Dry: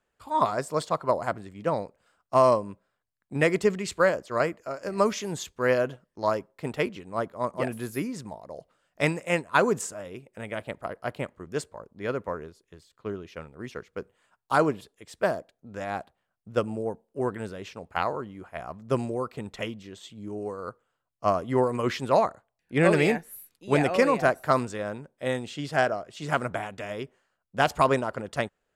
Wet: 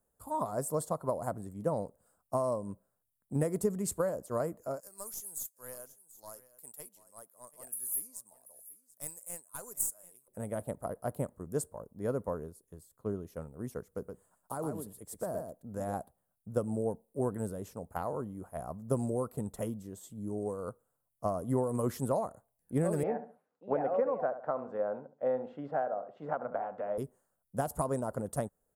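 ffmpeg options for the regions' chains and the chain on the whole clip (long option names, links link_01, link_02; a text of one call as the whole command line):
ffmpeg -i in.wav -filter_complex "[0:a]asettb=1/sr,asplit=3[link_01][link_02][link_03];[link_01]atrim=end=4.804[link_04];[link_02]atrim=start=4.8:end=10.28,asetpts=PTS-STARTPTS,afade=type=in:duration=0.004:curve=qsin,afade=type=out:start_time=5.476:duration=0.004:curve=qsin,aderivative,aeval=exprs='(tanh(25.1*val(0)+0.5)-tanh(0.5))/25.1':channel_layout=same,aecho=1:1:736:0.133,atrim=end_sample=241668[link_05];[link_03]atrim=start=10.276[link_06];[link_04][link_05]acrossfade=duration=0.004:curve1=hsin:curve2=qsin[link_07];[link_07][link_06]acrossfade=duration=0.004:curve1=qsin:curve2=hsin,asettb=1/sr,asplit=3[link_08][link_09][link_10];[link_08]atrim=end=13.834[link_11];[link_09]atrim=start=13.83:end=15.94,asetpts=PTS-STARTPTS,afade=type=in:duration=0.004:curve=qsin,afade=type=out:start_time=2.106:duration=0.004:curve=qsin,acompressor=threshold=-29dB:ratio=10:attack=3.2:release=140:knee=1:detection=peak,aecho=1:1:121:0.501,atrim=end_sample=93051[link_12];[link_10]atrim=start=15.936[link_13];[link_11][link_12]acrossfade=duration=0.004:curve1=hsin:curve2=qsin[link_14];[link_14][link_13]acrossfade=duration=0.004:curve1=qsin:curve2=hsin,asettb=1/sr,asplit=3[link_15][link_16][link_17];[link_15]atrim=end=23.034[link_18];[link_16]atrim=start=23.03:end=26.98,asetpts=PTS-STARTPTS,afade=type=in:duration=0.004:curve=qsin,afade=type=out:start_time=3.946:duration=0.004:curve=qsin,highpass=310,equalizer=frequency=340:width_type=q:width=4:gain=-5,equalizer=frequency=530:width_type=q:width=4:gain=5,equalizer=frequency=780:width_type=q:width=4:gain=5,equalizer=frequency=1400:width_type=q:width=4:gain=4,lowpass=frequency=2500:width=0.5412,lowpass=frequency=2500:width=1.3066,asplit=2[link_19][link_20];[link_20]adelay=70,lowpass=frequency=1500:poles=1,volume=-13dB,asplit=2[link_21][link_22];[link_22]adelay=70,lowpass=frequency=1500:poles=1,volume=0.28,asplit=2[link_23][link_24];[link_24]adelay=70,lowpass=frequency=1500:poles=1,volume=0.28[link_25];[link_19][link_21][link_23][link_25]amix=inputs=4:normalize=0,atrim=end_sample=174195[link_26];[link_17]atrim=start=26.976[link_27];[link_18][link_26]acrossfade=duration=0.004:curve1=hsin:curve2=qsin[link_28];[link_28][link_27]acrossfade=duration=0.004:curve1=qsin:curve2=hsin,equalizer=frequency=360:width_type=o:width=0.58:gain=-5.5,acompressor=threshold=-26dB:ratio=6,firequalizer=gain_entry='entry(430,0);entry(2400,-24);entry(9900,11)':delay=0.05:min_phase=1,volume=1dB" out.wav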